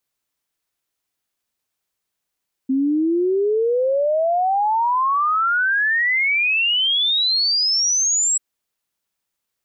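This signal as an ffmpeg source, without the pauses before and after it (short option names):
-f lavfi -i "aevalsrc='0.168*clip(min(t,5.69-t)/0.01,0,1)*sin(2*PI*260*5.69/log(7800/260)*(exp(log(7800/260)*t/5.69)-1))':d=5.69:s=44100"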